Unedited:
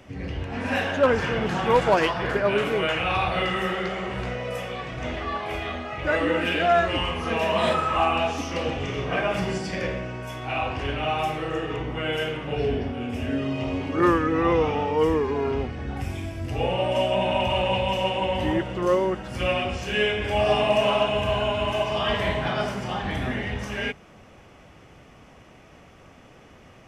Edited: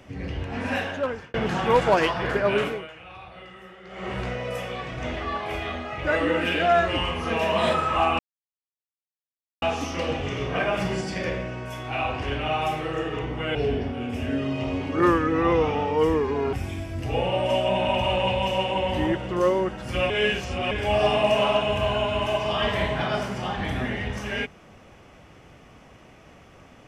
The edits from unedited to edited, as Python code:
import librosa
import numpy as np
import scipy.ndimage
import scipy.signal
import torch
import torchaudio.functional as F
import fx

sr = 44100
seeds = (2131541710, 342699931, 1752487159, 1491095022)

y = fx.edit(x, sr, fx.fade_out_span(start_s=0.63, length_s=0.71),
    fx.fade_down_up(start_s=2.64, length_s=1.45, db=-19.0, fade_s=0.29, curve='qua'),
    fx.insert_silence(at_s=8.19, length_s=1.43),
    fx.cut(start_s=12.12, length_s=0.43),
    fx.cut(start_s=15.53, length_s=0.46),
    fx.reverse_span(start_s=19.56, length_s=0.61), tone=tone)